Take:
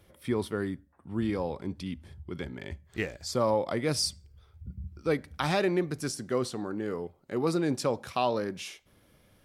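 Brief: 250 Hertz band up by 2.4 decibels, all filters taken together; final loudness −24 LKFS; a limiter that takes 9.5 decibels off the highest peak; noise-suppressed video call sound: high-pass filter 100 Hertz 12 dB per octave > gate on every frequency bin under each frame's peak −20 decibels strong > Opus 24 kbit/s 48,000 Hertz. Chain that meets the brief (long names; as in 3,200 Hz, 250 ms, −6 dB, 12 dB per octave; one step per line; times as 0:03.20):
parametric band 250 Hz +3.5 dB
brickwall limiter −22 dBFS
high-pass filter 100 Hz 12 dB per octave
gate on every frequency bin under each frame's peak −20 dB strong
level +10.5 dB
Opus 24 kbit/s 48,000 Hz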